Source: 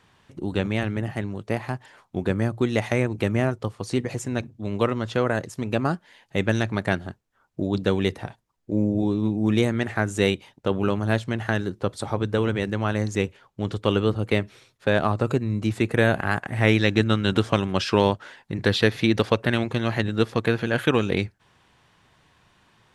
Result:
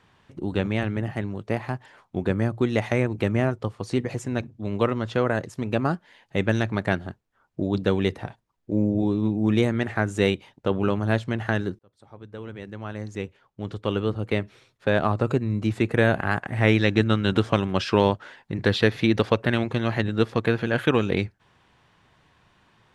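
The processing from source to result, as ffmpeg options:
-filter_complex "[0:a]asplit=2[s0][s1];[s0]atrim=end=11.79,asetpts=PTS-STARTPTS,afade=t=out:st=11.786:d=0.004:c=hsin[s2];[s1]atrim=start=11.79,asetpts=PTS-STARTPTS,afade=t=in:d=3.33[s3];[s2][s3]concat=n=2:v=0:a=1,highshelf=f=5500:g=-8"

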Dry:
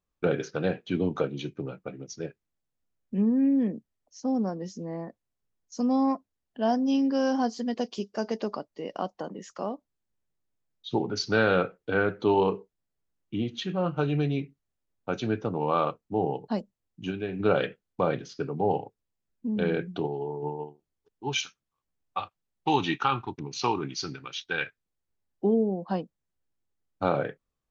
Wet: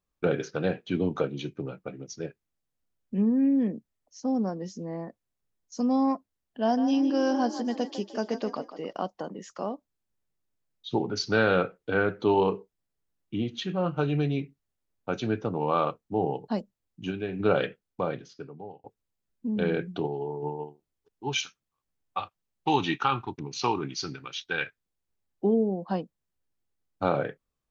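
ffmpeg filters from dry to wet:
-filter_complex "[0:a]asettb=1/sr,asplit=3[s0][s1][s2];[s0]atrim=end=6.624[s3];[s1]atrim=start=6.62:end=8.93,asetpts=PTS-STARTPTS,afade=t=in:d=0.004:c=qsin,afade=t=out:st=2.306:d=0.004:c=qsin,asplit=5[s4][s5][s6][s7][s8];[s5]adelay=151,afreqshift=38,volume=0.282[s9];[s6]adelay=302,afreqshift=76,volume=0.0955[s10];[s7]adelay=453,afreqshift=114,volume=0.0327[s11];[s8]adelay=604,afreqshift=152,volume=0.0111[s12];[s4][s9][s10][s11][s12]amix=inputs=5:normalize=0,atrim=end_sample=101871[s13];[s2]atrim=start=8.926[s14];[s3][s13]acrossfade=d=0.004:c1=hsin:c2=qsin[s15];[s15][s14]acrossfade=d=0.004:c1=qsin:c2=hsin,asplit=2[s16][s17];[s16]atrim=end=18.84,asetpts=PTS-STARTPTS,afade=t=out:st=17.63:d=1.21[s18];[s17]atrim=start=18.84,asetpts=PTS-STARTPTS,afade=t=in:d=0.004:c=hsin[s19];[s18][s19]concat=n=2:v=0:a=1"

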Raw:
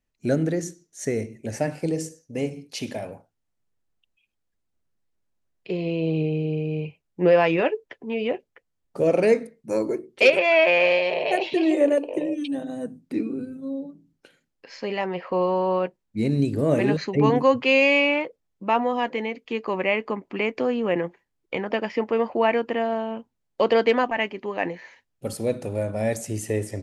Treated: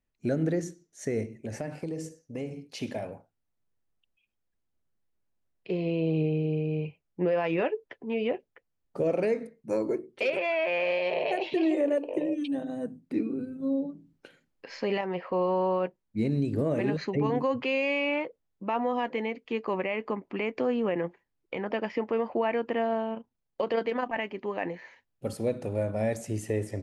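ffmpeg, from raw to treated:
-filter_complex "[0:a]asettb=1/sr,asplit=3[s0][s1][s2];[s0]atrim=end=1.284[s3];[s1]atrim=start=1.28:end=2.8,asetpts=PTS-STARTPTS,afade=t=in:d=0.004:c=qsin,afade=t=out:st=1.516:d=0.004:c=qsin,acompressor=threshold=0.0398:ratio=5:attack=3.2:release=140:knee=1:detection=peak[s4];[s2]atrim=start=2.796[s5];[s3][s4]acrossfade=d=0.004:c1=hsin:c2=qsin[s6];[s6][s5]acrossfade=d=0.004:c1=qsin:c2=hsin,asettb=1/sr,asplit=3[s7][s8][s9];[s7]atrim=end=13.604[s10];[s8]atrim=start=13.6:end=15.01,asetpts=PTS-STARTPTS,afade=t=in:d=0.004:c=qsin,afade=t=out:st=1.406:d=0.004:c=qsin,acontrast=25[s11];[s9]atrim=start=15.006[s12];[s10][s11]acrossfade=d=0.004:c1=hsin:c2=qsin[s13];[s13][s12]acrossfade=d=0.004:c1=qsin:c2=hsin,asettb=1/sr,asplit=3[s14][s15][s16];[s14]atrim=end=23.144[s17];[s15]atrim=start=23.14:end=24.16,asetpts=PTS-STARTPTS,afade=t=in:d=0.004:c=qsin,afade=t=out:st=1.016:d=0.004:c=qsin,tremolo=f=28:d=0.519[s18];[s16]atrim=start=24.156[s19];[s17][s18]acrossfade=d=0.004:c1=hsin:c2=qsin[s20];[s20][s19]acrossfade=d=0.004:c1=qsin:c2=hsin,alimiter=limit=0.168:level=0:latency=1:release=110,highshelf=f=4100:g=-8,volume=0.75"

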